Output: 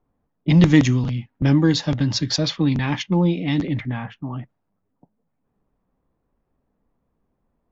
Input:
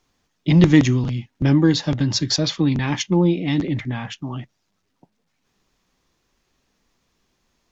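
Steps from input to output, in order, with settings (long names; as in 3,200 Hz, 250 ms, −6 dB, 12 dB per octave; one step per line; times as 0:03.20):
low-pass that shuts in the quiet parts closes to 780 Hz, open at −13.5 dBFS
parametric band 360 Hz −6.5 dB 0.2 octaves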